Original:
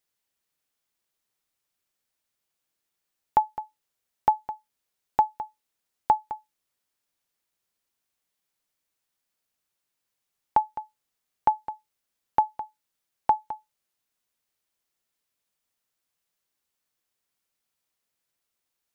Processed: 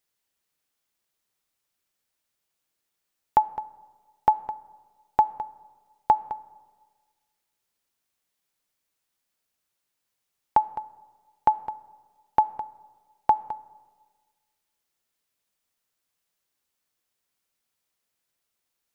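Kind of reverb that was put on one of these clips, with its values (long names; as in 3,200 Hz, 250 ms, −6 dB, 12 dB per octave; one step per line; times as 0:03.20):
comb and all-pass reverb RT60 1.5 s, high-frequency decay 0.4×, pre-delay 5 ms, DRR 19.5 dB
level +1.5 dB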